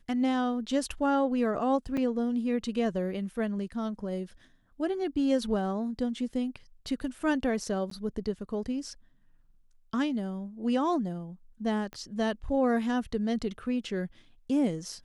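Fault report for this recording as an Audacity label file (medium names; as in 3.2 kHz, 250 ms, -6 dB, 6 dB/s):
1.970000	1.970000	dropout 4.3 ms
7.900000	7.910000	dropout 13 ms
11.930000	11.930000	pop -27 dBFS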